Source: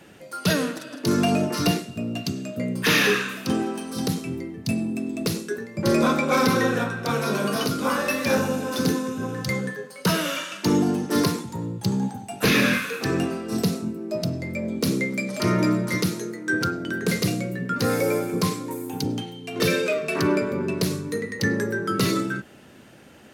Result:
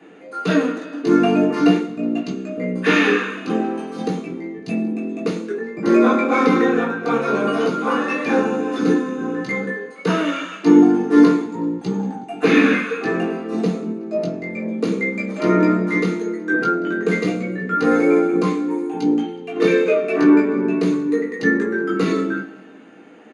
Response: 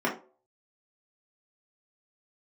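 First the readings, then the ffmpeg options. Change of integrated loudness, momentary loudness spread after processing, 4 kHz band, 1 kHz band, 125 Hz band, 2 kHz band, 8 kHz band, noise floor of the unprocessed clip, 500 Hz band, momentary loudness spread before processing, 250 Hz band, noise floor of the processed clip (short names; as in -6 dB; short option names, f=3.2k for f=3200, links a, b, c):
+5.5 dB, 11 LU, -4.5 dB, +5.0 dB, -1.5 dB, +3.0 dB, n/a, -45 dBFS, +6.5 dB, 9 LU, +7.0 dB, -39 dBFS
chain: -filter_complex "[0:a]aecho=1:1:185|370|555:0.0794|0.0357|0.0161[a];[1:a]atrim=start_sample=2205,asetrate=52920,aresample=44100[b];[a][b]afir=irnorm=-1:irlink=0,aresample=22050,aresample=44100,volume=-7.5dB"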